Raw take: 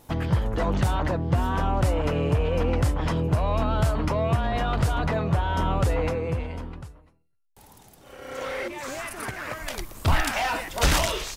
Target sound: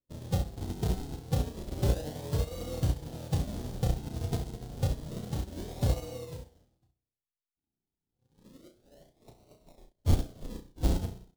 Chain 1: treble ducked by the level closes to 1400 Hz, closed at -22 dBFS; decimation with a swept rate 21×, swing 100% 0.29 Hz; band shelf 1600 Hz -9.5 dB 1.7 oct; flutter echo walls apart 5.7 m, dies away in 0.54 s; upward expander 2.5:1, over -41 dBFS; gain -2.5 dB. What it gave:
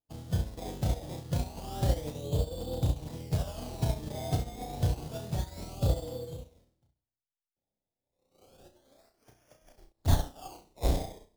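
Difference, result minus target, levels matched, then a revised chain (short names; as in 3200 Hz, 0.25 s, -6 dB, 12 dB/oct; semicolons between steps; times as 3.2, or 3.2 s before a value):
decimation with a swept rate: distortion -4 dB
treble ducked by the level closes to 1400 Hz, closed at -22 dBFS; decimation with a swept rate 52×, swing 100% 0.29 Hz; band shelf 1600 Hz -9.5 dB 1.7 oct; flutter echo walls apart 5.7 m, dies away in 0.54 s; upward expander 2.5:1, over -41 dBFS; gain -2.5 dB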